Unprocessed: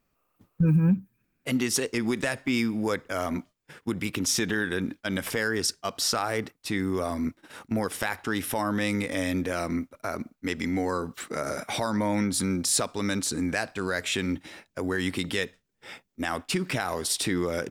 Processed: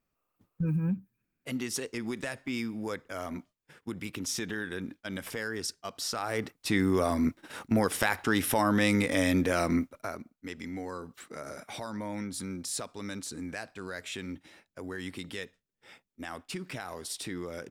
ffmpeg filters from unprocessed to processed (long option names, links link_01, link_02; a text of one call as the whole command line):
ffmpeg -i in.wav -af "volume=2dB,afade=type=in:start_time=6.13:duration=0.63:silence=0.316228,afade=type=out:start_time=9.78:duration=0.43:silence=0.237137" out.wav